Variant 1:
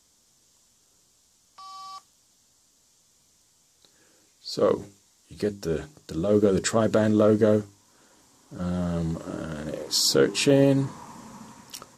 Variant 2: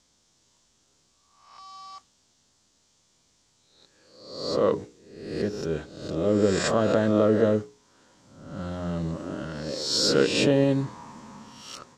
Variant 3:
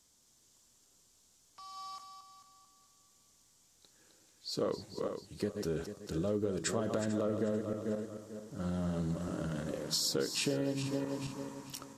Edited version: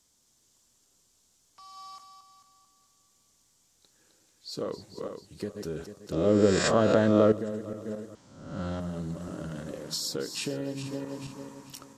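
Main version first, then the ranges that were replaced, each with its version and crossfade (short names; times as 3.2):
3
6.12–7.32 from 2
8.15–8.8 from 2
not used: 1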